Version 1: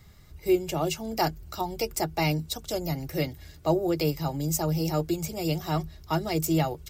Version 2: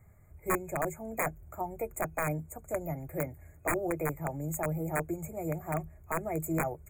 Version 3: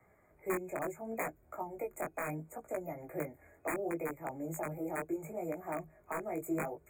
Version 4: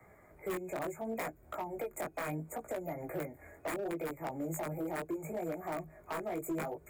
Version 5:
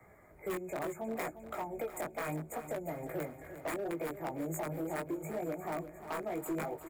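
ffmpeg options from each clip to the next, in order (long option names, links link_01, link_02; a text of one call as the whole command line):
ffmpeg -i in.wav -af "equalizer=frequency=100:width_type=o:width=0.67:gain=7,equalizer=frequency=630:width_type=o:width=0.67:gain=8,equalizer=frequency=4000:width_type=o:width=0.67:gain=-9,aeval=exprs='(mod(5.01*val(0)+1,2)-1)/5.01':channel_layout=same,afftfilt=real='re*(1-between(b*sr/4096,2500,6600))':imag='im*(1-between(b*sr/4096,2500,6600))':win_size=4096:overlap=0.75,volume=-8.5dB" out.wav
ffmpeg -i in.wav -filter_complex "[0:a]acrossover=split=300|3000[link_01][link_02][link_03];[link_02]acompressor=threshold=-43dB:ratio=3[link_04];[link_01][link_04][link_03]amix=inputs=3:normalize=0,flanger=delay=16:depth=6.1:speed=0.71,acrossover=split=240 2800:gain=0.0891 1 0.251[link_05][link_06][link_07];[link_05][link_06][link_07]amix=inputs=3:normalize=0,volume=6.5dB" out.wav
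ffmpeg -i in.wav -filter_complex "[0:a]acompressor=threshold=-43dB:ratio=2.5,acrossover=split=210[link_01][link_02];[link_02]asoftclip=type=hard:threshold=-40dB[link_03];[link_01][link_03]amix=inputs=2:normalize=0,volume=7dB" out.wav
ffmpeg -i in.wav -af "aecho=1:1:353|706|1059|1412|1765|2118:0.251|0.143|0.0816|0.0465|0.0265|0.0151" out.wav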